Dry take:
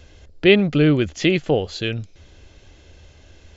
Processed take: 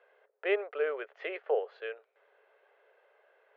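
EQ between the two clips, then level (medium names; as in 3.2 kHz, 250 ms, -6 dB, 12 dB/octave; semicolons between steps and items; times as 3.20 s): Chebyshev high-pass 420 Hz, order 6; four-pole ladder low-pass 2 kHz, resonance 25%; -2.5 dB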